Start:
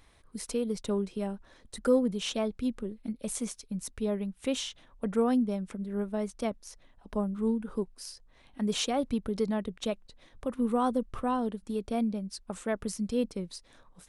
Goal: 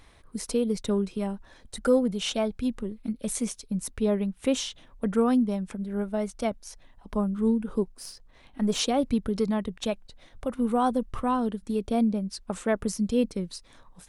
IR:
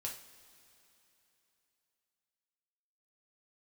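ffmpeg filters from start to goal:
-filter_complex "[0:a]asplit=3[s0][s1][s2];[s0]afade=t=out:st=7.88:d=0.02[s3];[s1]aeval=exprs='if(lt(val(0),0),0.708*val(0),val(0))':c=same,afade=t=in:st=7.88:d=0.02,afade=t=out:st=8.78:d=0.02[s4];[s2]afade=t=in:st=8.78:d=0.02[s5];[s3][s4][s5]amix=inputs=3:normalize=0,aphaser=in_gain=1:out_gain=1:delay=1.4:decay=0.24:speed=0.24:type=sinusoidal,volume=1.5"

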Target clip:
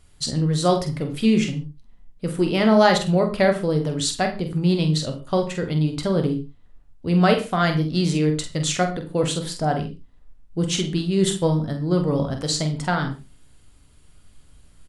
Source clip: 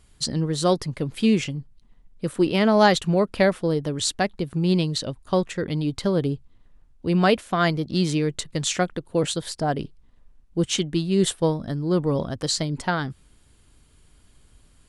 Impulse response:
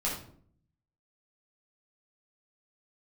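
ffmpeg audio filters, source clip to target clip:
-filter_complex "[0:a]asplit=2[s0][s1];[s1]adelay=46,volume=0.398[s2];[s0][s2]amix=inputs=2:normalize=0,asplit=2[s3][s4];[1:a]atrim=start_sample=2205,atrim=end_sample=6615[s5];[s4][s5]afir=irnorm=-1:irlink=0,volume=0.299[s6];[s3][s6]amix=inputs=2:normalize=0,volume=0.794"

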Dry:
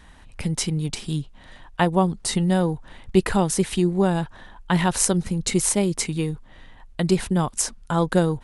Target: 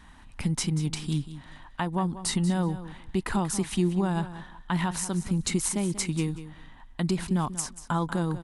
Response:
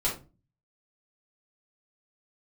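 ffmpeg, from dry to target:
-af "equalizer=f=250:t=o:w=1:g=5,equalizer=f=500:t=o:w=1:g=-7,equalizer=f=1000:t=o:w=1:g=5,alimiter=limit=0.224:level=0:latency=1:release=228,aecho=1:1:187|374:0.211|0.0338,volume=0.668"

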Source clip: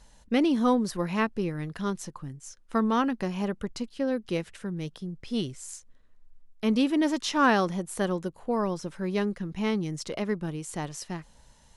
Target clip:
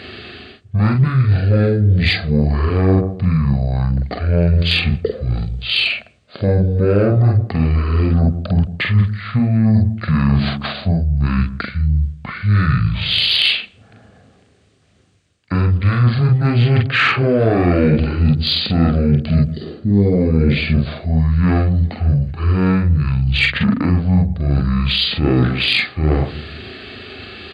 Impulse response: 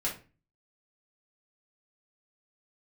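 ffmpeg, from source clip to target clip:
-filter_complex "[0:a]asplit=2[s0][s1];[s1]adelay=70,lowpass=f=1200:p=1,volume=0.126,asplit=2[s2][s3];[s3]adelay=70,lowpass=f=1200:p=1,volume=0.43,asplit=2[s4][s5];[s5]adelay=70,lowpass=f=1200:p=1,volume=0.43,asplit=2[s6][s7];[s7]adelay=70,lowpass=f=1200:p=1,volume=0.43[s8];[s2][s4][s6][s8]amix=inputs=4:normalize=0[s9];[s0][s9]amix=inputs=2:normalize=0,apsyclip=18.8,flanger=delay=16:depth=5.3:speed=0.17,areverse,acompressor=threshold=0.158:ratio=10,areverse,equalizer=f=2100:t=o:w=0.4:g=-13,asetrate=18846,aresample=44100,highpass=f=78:w=0.5412,highpass=f=78:w=1.3066,acontrast=64"

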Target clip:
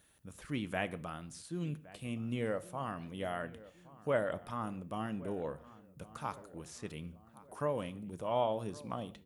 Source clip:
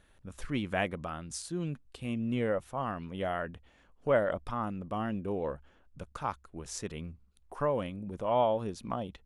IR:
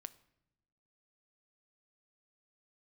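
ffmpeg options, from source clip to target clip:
-filter_complex "[0:a]highpass=67,aemphasis=mode=production:type=75fm,acrossover=split=3200[s0][s1];[s1]acompressor=threshold=0.00447:ratio=4:attack=1:release=60[s2];[s0][s2]amix=inputs=2:normalize=0,equalizer=f=160:t=o:w=2.5:g=2.5,asplit=2[s3][s4];[s4]adelay=1116,lowpass=f=1800:p=1,volume=0.119,asplit=2[s5][s6];[s6]adelay=1116,lowpass=f=1800:p=1,volume=0.52,asplit=2[s7][s8];[s8]adelay=1116,lowpass=f=1800:p=1,volume=0.52,asplit=2[s9][s10];[s10]adelay=1116,lowpass=f=1800:p=1,volume=0.52[s11];[s3][s5][s7][s9][s11]amix=inputs=5:normalize=0[s12];[1:a]atrim=start_sample=2205,afade=t=out:st=0.22:d=0.01,atrim=end_sample=10143[s13];[s12][s13]afir=irnorm=-1:irlink=0"

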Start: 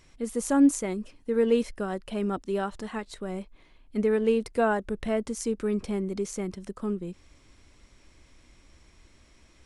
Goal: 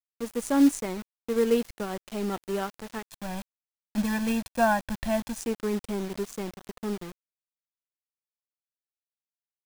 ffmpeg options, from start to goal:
-filter_complex "[0:a]acrusher=bits=5:mode=log:mix=0:aa=0.000001,aeval=exprs='sgn(val(0))*max(abs(val(0))-0.00891,0)':c=same,asettb=1/sr,asplit=3[s0][s1][s2];[s0]atrim=end=3.054[s3];[s1]atrim=start=3.05:end=5.4,asetpts=PTS-STARTPTS,afade=t=in:d=0.004:c=qsin,afade=t=out:st=2.346:d=0.004:c=qsin,aecho=1:1:1.2:0.95,atrim=end_sample=103635[s4];[s2]atrim=start=5.396[s5];[s3][s4]acrossfade=d=0.004:c1=hsin:c2=qsin[s6];[s6][s5]acrossfade=d=0.004:c1=qsin:c2=hsin,acrusher=bits=6:mix=0:aa=0.000001"

